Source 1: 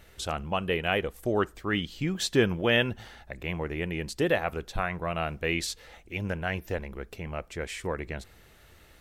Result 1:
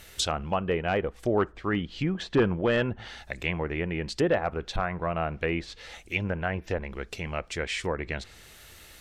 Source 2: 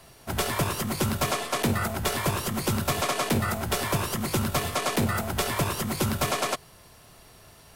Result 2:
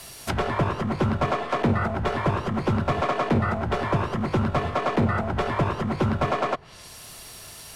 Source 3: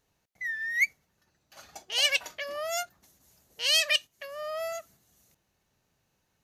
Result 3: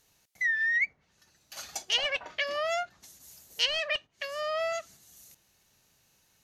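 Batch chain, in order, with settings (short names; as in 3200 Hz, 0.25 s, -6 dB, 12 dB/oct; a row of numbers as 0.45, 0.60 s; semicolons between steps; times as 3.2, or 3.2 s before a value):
wavefolder -16 dBFS; treble ducked by the level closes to 1200 Hz, closed at -26.5 dBFS; high shelf 2300 Hz +11.5 dB; normalise peaks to -12 dBFS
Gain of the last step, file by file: +1.5, +4.0, +2.0 dB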